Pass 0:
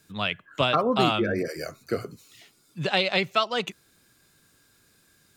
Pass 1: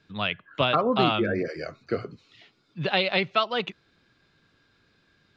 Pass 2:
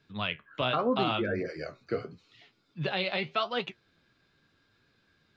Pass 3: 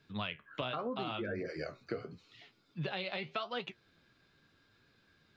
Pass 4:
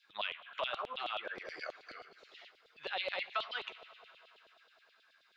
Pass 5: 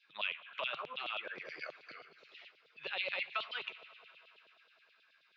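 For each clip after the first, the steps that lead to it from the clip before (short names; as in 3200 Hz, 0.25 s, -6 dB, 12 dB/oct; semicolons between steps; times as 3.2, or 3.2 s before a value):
LPF 4300 Hz 24 dB/oct
limiter -12.5 dBFS, peak gain reduction 5 dB; flange 0.82 Hz, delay 6.9 ms, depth 10 ms, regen +60%
compressor 5:1, threshold -35 dBFS, peak gain reduction 12 dB
Schroeder reverb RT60 3.5 s, combs from 32 ms, DRR 14 dB; LFO high-pass saw down 9.4 Hz 520–3800 Hz; gain -1 dB
speaker cabinet 120–5800 Hz, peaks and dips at 150 Hz +8 dB, 750 Hz -5 dB, 2500 Hz +8 dB; gain -2.5 dB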